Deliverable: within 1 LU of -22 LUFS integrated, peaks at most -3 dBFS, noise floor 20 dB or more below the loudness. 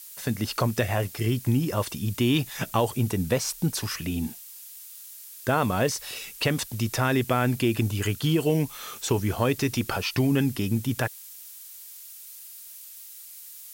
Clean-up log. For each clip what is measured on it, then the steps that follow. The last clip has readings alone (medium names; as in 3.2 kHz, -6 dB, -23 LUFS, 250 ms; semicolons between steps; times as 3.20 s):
noise floor -44 dBFS; noise floor target -47 dBFS; loudness -26.5 LUFS; peak level -11.0 dBFS; loudness target -22.0 LUFS
-> noise reduction 6 dB, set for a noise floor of -44 dBFS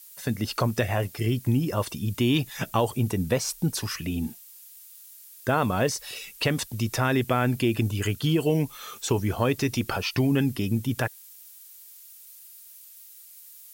noise floor -49 dBFS; loudness -26.5 LUFS; peak level -11.5 dBFS; loudness target -22.0 LUFS
-> trim +4.5 dB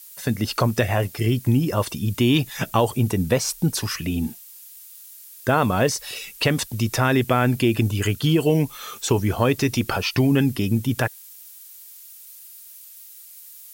loudness -22.0 LUFS; peak level -7.0 dBFS; noise floor -44 dBFS